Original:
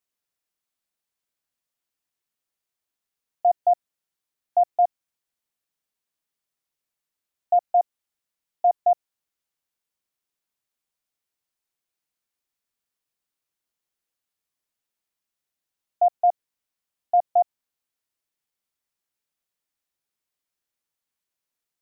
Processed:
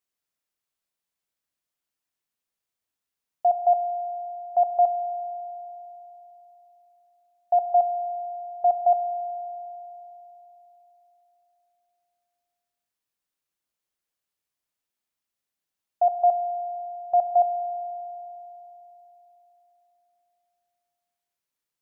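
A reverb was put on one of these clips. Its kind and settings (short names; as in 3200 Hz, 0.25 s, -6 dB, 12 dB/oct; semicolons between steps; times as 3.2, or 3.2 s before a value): spring tank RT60 3.6 s, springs 34 ms, chirp 50 ms, DRR 8 dB; gain -1.5 dB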